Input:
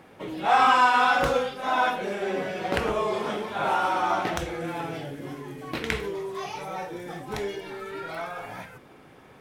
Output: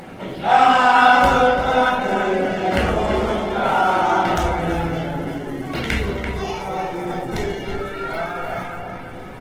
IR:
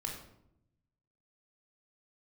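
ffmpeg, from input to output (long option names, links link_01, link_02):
-filter_complex "[0:a]asplit=2[link_01][link_02];[link_02]adelay=339,lowpass=frequency=2100:poles=1,volume=-4.5dB,asplit=2[link_03][link_04];[link_04]adelay=339,lowpass=frequency=2100:poles=1,volume=0.2,asplit=2[link_05][link_06];[link_06]adelay=339,lowpass=frequency=2100:poles=1,volume=0.2[link_07];[link_01][link_03][link_05][link_07]amix=inputs=4:normalize=0,asplit=2[link_08][link_09];[link_09]acompressor=mode=upward:threshold=-26dB:ratio=2.5,volume=-2dB[link_10];[link_08][link_10]amix=inputs=2:normalize=0[link_11];[1:a]atrim=start_sample=2205,asetrate=70560,aresample=44100[link_12];[link_11][link_12]afir=irnorm=-1:irlink=0,asubboost=boost=2.5:cutoff=67,volume=4dB" -ar 48000 -c:a libopus -b:a 16k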